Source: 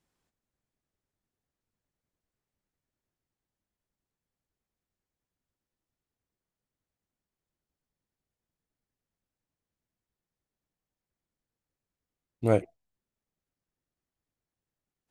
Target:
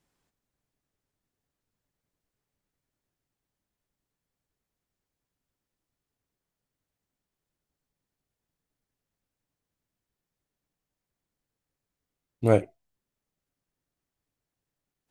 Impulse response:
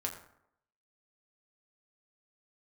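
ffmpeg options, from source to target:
-filter_complex "[0:a]asplit=2[link_01][link_02];[1:a]atrim=start_sample=2205,atrim=end_sample=3528,adelay=7[link_03];[link_02][link_03]afir=irnorm=-1:irlink=0,volume=-16.5dB[link_04];[link_01][link_04]amix=inputs=2:normalize=0,volume=3dB"

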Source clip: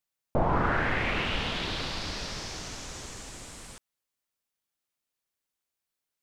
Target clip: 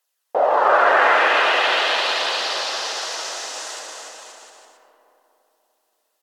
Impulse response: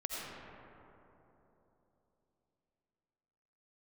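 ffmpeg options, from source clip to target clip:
-filter_complex "[0:a]highpass=frequency=580:width=0.5412,highpass=frequency=580:width=1.3066,bandreject=frequency=2600:width=10,aphaser=in_gain=1:out_gain=1:delay=3.5:decay=0.35:speed=0.44:type=triangular,asetrate=38170,aresample=44100,atempo=1.15535,aecho=1:1:290|522|707.6|856.1|974.9:0.631|0.398|0.251|0.158|0.1,asplit=2[link_01][link_02];[1:a]atrim=start_sample=2205[link_03];[link_02][link_03]afir=irnorm=-1:irlink=0,volume=-3.5dB[link_04];[link_01][link_04]amix=inputs=2:normalize=0,volume=8dB"

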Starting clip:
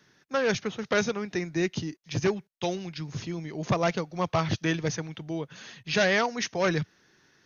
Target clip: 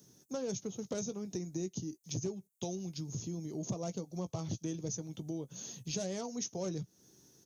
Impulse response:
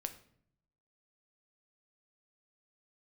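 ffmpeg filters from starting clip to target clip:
-filter_complex "[0:a]asplit=2[link_01][link_02];[link_02]adelay=16,volume=-11.5dB[link_03];[link_01][link_03]amix=inputs=2:normalize=0,acontrast=20,firequalizer=gain_entry='entry(260,0);entry(1700,-23);entry(3300,-10);entry(5000,-4);entry(7200,14)':delay=0.05:min_phase=1,acompressor=threshold=-36dB:ratio=3,highpass=42,volume=-2.5dB"

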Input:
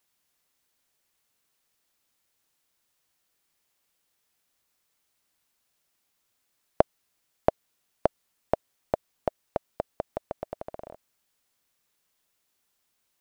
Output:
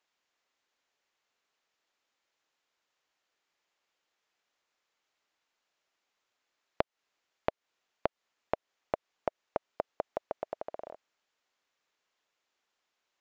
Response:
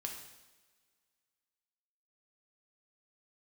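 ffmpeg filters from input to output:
-af "bass=frequency=250:gain=-14,treble=frequency=4000:gain=-8,aresample=16000,aresample=44100,acompressor=threshold=-26dB:ratio=12"

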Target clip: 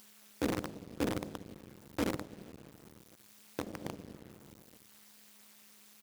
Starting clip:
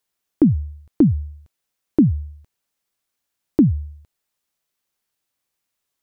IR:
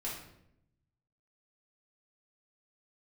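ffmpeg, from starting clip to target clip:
-filter_complex "[0:a]asplit=2[link_01][link_02];[link_02]adelay=250.7,volume=-22dB,highshelf=frequency=4000:gain=-5.64[link_03];[link_01][link_03]amix=inputs=2:normalize=0[link_04];[1:a]atrim=start_sample=2205[link_05];[link_04][link_05]afir=irnorm=-1:irlink=0,asettb=1/sr,asplit=3[link_06][link_07][link_08];[link_06]atrim=end=2.244[link_09];[link_07]atrim=start=2.24:end=3.85,asetpts=PTS-STARTPTS,afade=type=in:duration=0.004:curve=qsin,afade=type=out:start_time=1.606:duration=0.004:curve=qsin,acompressor=threshold=-21dB:ratio=4[link_10];[link_08]atrim=start=3.846[link_11];[link_09][link_10]acrossfade=duration=0.004:curve1=hsin:curve2=qsin[link_12];[link_12][link_11]acrossfade=duration=0.004:curve1=qsin:curve2=hsin,lowpass=frequency=1200:poles=1,aderivative,tremolo=f=210:d=0.919,acompressor=mode=upward:threshold=-44dB:ratio=2.5,acrusher=bits=8:dc=4:mix=0:aa=0.000001,highpass=frequency=110:poles=1,volume=12.5dB"

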